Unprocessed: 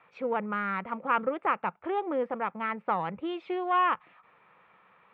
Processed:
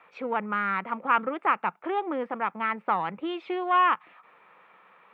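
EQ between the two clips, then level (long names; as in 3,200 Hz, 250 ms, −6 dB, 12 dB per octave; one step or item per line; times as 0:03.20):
dynamic equaliser 520 Hz, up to −7 dB, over −44 dBFS, Q 1.8
high-pass filter 230 Hz 12 dB per octave
+4.5 dB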